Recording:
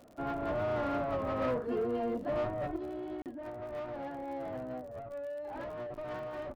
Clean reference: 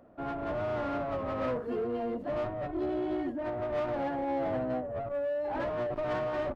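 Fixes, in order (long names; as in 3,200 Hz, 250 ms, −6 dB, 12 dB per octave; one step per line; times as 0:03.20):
click removal
repair the gap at 0:03.22, 38 ms
level correction +8 dB, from 0:02.76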